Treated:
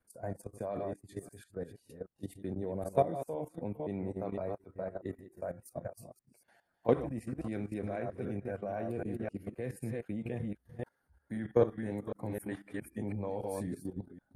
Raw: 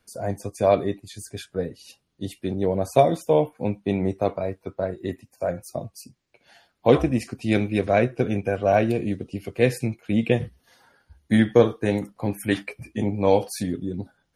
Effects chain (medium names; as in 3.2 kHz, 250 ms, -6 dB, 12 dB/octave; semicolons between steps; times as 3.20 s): chunks repeated in reverse 258 ms, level -5.5 dB; level held to a coarse grid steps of 14 dB; high-order bell 4 kHz -10.5 dB; trim -8.5 dB